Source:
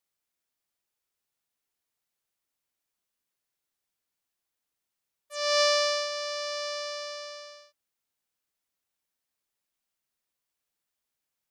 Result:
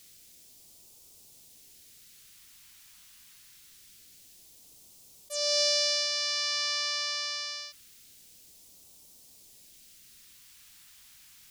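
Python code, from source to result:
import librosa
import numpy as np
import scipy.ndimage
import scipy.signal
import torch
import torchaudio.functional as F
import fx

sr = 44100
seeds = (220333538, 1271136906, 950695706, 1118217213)

y = fx.phaser_stages(x, sr, stages=2, low_hz=500.0, high_hz=1500.0, hz=0.25, feedback_pct=35)
y = fx.env_flatten(y, sr, amount_pct=50)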